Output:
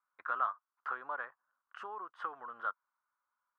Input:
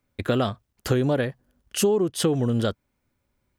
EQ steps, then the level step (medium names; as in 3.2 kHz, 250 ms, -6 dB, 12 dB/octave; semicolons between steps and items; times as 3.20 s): Butterworth band-pass 1.2 kHz, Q 2.6; +1.5 dB